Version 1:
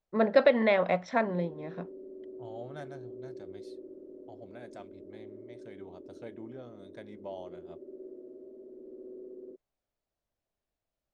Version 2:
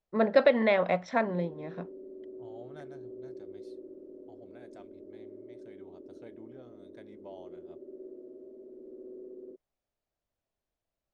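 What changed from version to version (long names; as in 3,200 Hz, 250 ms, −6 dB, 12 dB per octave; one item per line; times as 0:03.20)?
second voice −6.0 dB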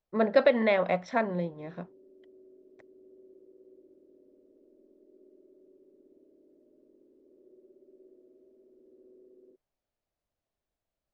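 second voice: muted
background −11.5 dB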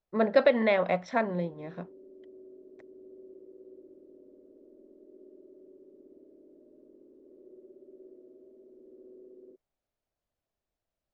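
background +5.5 dB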